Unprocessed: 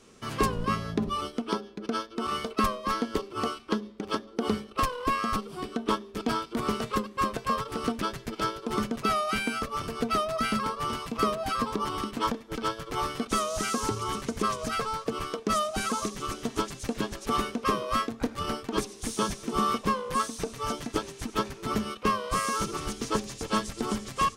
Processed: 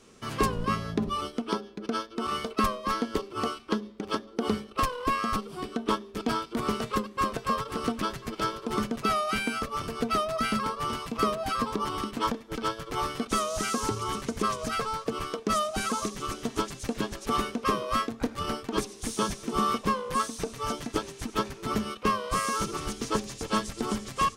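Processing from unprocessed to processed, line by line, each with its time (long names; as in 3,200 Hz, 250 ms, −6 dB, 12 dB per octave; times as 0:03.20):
0:06.65–0:07.65: delay throw 520 ms, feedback 55%, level −15.5 dB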